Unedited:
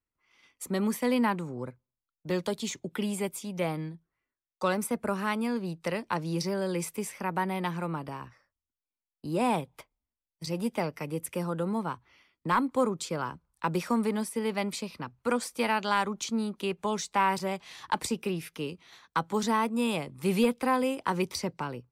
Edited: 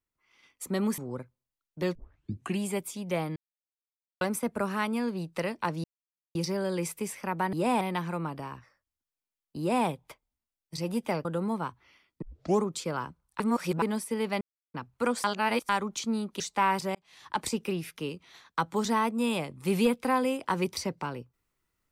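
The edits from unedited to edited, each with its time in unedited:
0:00.98–0:01.46: remove
0:02.43: tape start 0.65 s
0:03.84–0:04.69: silence
0:06.32: splice in silence 0.51 s
0:09.28–0:09.56: duplicate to 0:07.50
0:10.94–0:11.50: remove
0:12.47: tape start 0.42 s
0:13.65–0:14.07: reverse
0:14.66–0:14.99: silence
0:15.49–0:15.94: reverse
0:16.65–0:16.98: remove
0:17.53–0:18.05: fade in

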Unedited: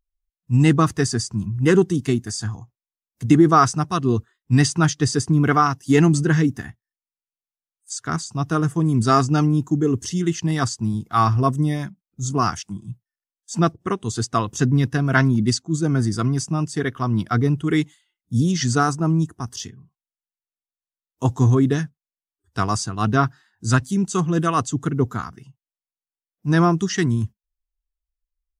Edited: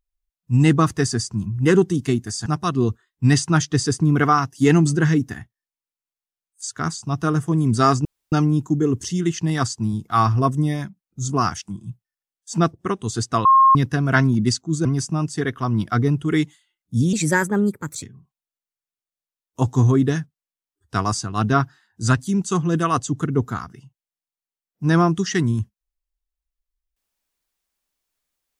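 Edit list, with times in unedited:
0:02.46–0:03.74: remove
0:09.33: splice in room tone 0.27 s
0:14.46–0:14.76: beep over 1,070 Hz −9 dBFS
0:15.86–0:16.24: remove
0:18.52–0:19.66: play speed 127%

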